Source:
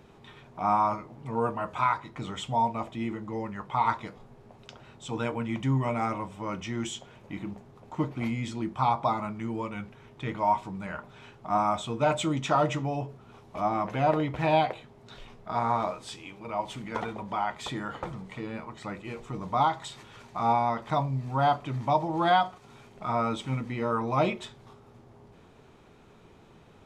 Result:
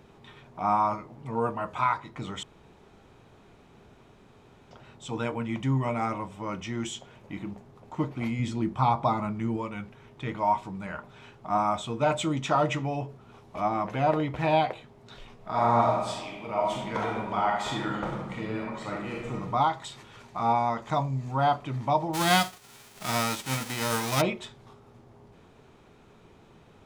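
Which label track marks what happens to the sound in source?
2.430000	4.710000	room tone
8.390000	9.570000	bass shelf 340 Hz +6 dB
12.690000	13.680000	dynamic bell 2.3 kHz, up to +5 dB, over -47 dBFS, Q 1.6
15.350000	19.340000	reverb throw, RT60 1.1 s, DRR -2 dB
20.560000	21.320000	peaking EQ 6.8 kHz +10 dB 0.27 oct
22.130000	24.200000	formants flattened exponent 0.3

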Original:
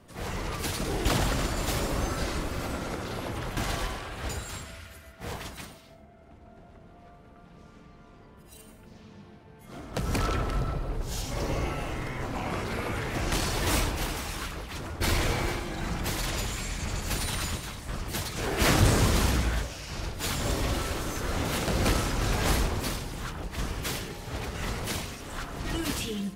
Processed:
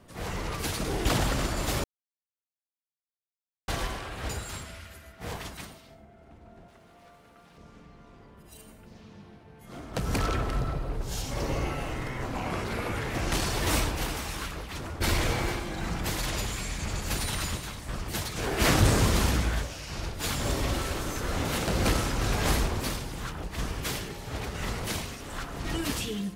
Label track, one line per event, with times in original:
1.840000	3.680000	mute
6.680000	7.580000	tilt EQ +2.5 dB/octave

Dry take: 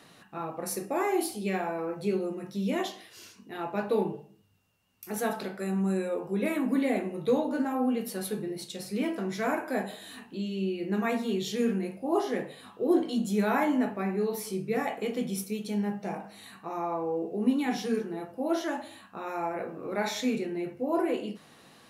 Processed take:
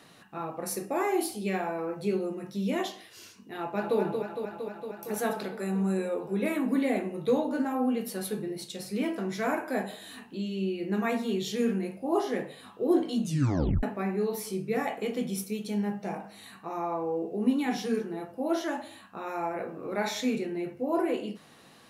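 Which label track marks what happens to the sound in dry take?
3.580000	3.990000	echo throw 230 ms, feedback 80%, level -6 dB
13.210000	13.210000	tape stop 0.62 s

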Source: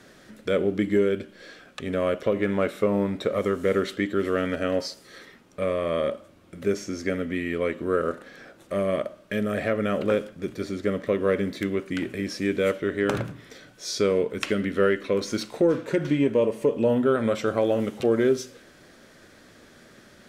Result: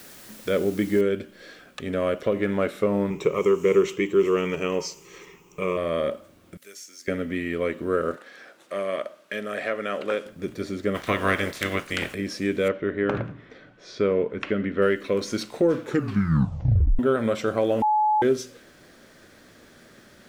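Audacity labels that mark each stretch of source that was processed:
1.010000	1.010000	noise floor step -47 dB -69 dB
3.100000	5.770000	rippled EQ curve crests per octave 0.74, crest to trough 15 dB
6.570000	7.080000	differentiator
8.160000	10.260000	frequency weighting A
10.940000	12.130000	spectral peaks clipped ceiling under each frame's peak by 22 dB
12.680000	14.820000	low-pass 2.4 kHz
15.810000	15.810000	tape stop 1.18 s
17.820000	18.220000	bleep 853 Hz -17.5 dBFS

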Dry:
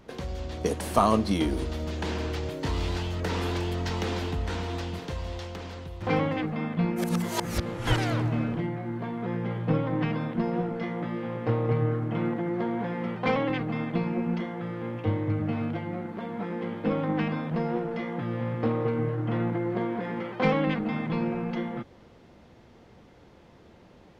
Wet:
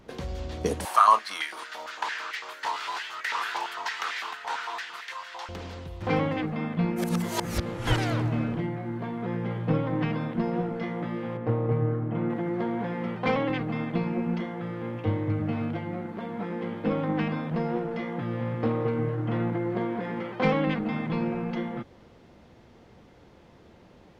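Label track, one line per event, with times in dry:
0.850000	5.490000	step-sequenced high-pass 8.9 Hz 890–1900 Hz
11.370000	12.300000	low-pass 1.2 kHz 6 dB/octave

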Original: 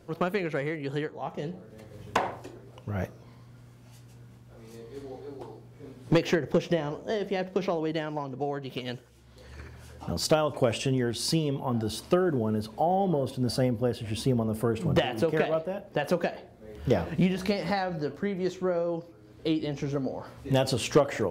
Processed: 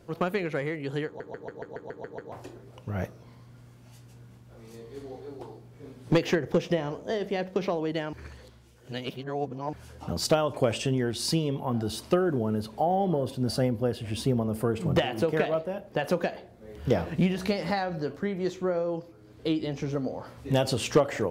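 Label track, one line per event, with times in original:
1.060000	1.060000	stutter in place 0.14 s, 9 plays
8.130000	9.730000	reverse

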